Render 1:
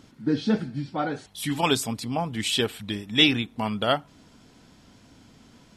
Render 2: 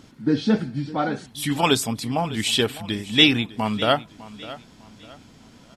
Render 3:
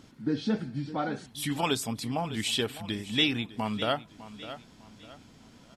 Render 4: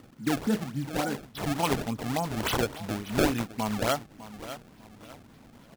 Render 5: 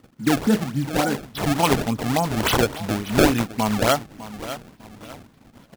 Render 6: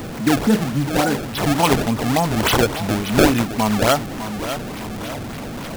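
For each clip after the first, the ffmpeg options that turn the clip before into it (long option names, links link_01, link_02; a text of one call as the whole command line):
ffmpeg -i in.wav -af "aecho=1:1:604|1208|1812:0.141|0.0466|0.0154,volume=3.5dB" out.wav
ffmpeg -i in.wav -af "acompressor=threshold=-25dB:ratio=1.5,volume=-5dB" out.wav
ffmpeg -i in.wav -af "acrusher=samples=26:mix=1:aa=0.000001:lfo=1:lforange=41.6:lforate=3.5,volume=1.5dB" out.wav
ffmpeg -i in.wav -af "agate=range=-12dB:threshold=-51dB:ratio=16:detection=peak,volume=8dB" out.wav
ffmpeg -i in.wav -af "aeval=exprs='val(0)+0.5*0.0501*sgn(val(0))':channel_layout=same,volume=1.5dB" out.wav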